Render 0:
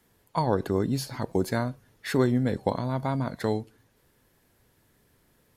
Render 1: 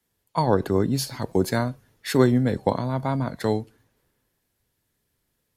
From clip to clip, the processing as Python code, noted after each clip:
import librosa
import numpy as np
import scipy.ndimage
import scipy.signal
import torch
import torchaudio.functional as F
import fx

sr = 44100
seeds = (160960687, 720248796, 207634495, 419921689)

y = fx.band_widen(x, sr, depth_pct=40)
y = y * 10.0 ** (3.5 / 20.0)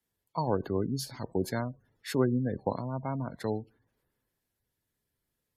y = fx.spec_gate(x, sr, threshold_db=-25, keep='strong')
y = y * 10.0 ** (-8.5 / 20.0)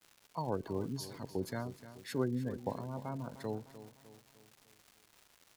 y = fx.dmg_crackle(x, sr, seeds[0], per_s=340.0, level_db=-41.0)
y = fx.echo_feedback(y, sr, ms=302, feedback_pct=49, wet_db=-14.0)
y = y * 10.0 ** (-7.0 / 20.0)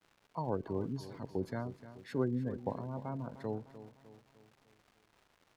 y = fx.lowpass(x, sr, hz=1600.0, slope=6)
y = y * 10.0 ** (1.0 / 20.0)